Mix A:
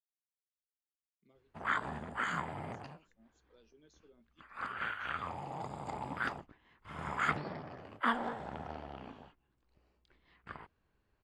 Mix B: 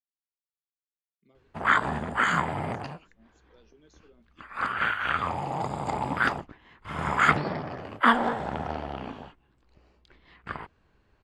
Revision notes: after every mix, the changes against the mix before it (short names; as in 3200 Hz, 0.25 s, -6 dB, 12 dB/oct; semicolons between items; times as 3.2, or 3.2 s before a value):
speech +5.0 dB; background +11.5 dB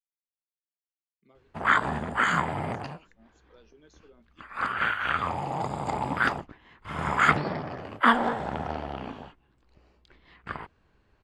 speech: add bell 1100 Hz +7 dB 2 oct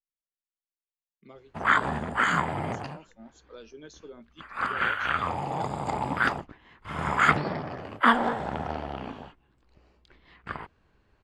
speech +11.0 dB